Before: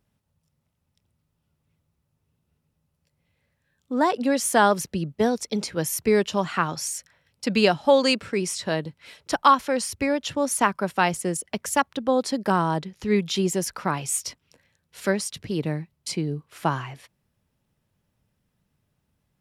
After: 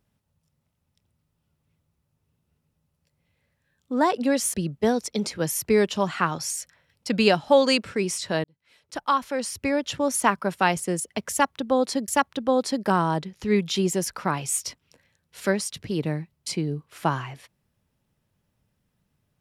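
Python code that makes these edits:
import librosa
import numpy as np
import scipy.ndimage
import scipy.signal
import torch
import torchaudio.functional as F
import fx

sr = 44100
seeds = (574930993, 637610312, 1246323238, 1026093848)

y = fx.edit(x, sr, fx.cut(start_s=4.54, length_s=0.37),
    fx.fade_in_span(start_s=8.81, length_s=1.37),
    fx.repeat(start_s=11.68, length_s=0.77, count=2), tone=tone)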